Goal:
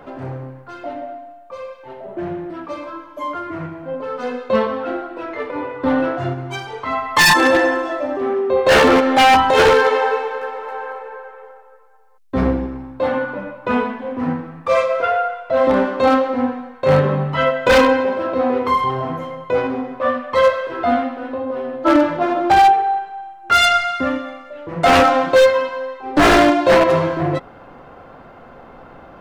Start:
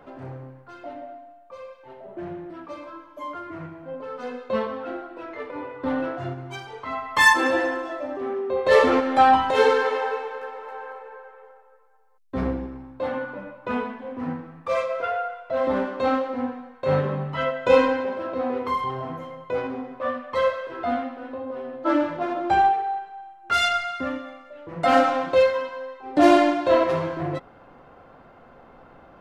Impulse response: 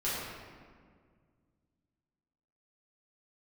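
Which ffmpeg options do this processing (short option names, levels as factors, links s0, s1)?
-af "aeval=exprs='0.2*(abs(mod(val(0)/0.2+3,4)-2)-1)':c=same,volume=2.66"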